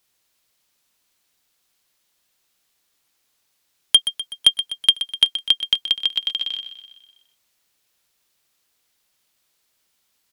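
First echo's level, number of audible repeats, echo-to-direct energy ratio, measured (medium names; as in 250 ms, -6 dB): -11.5 dB, 5, -10.0 dB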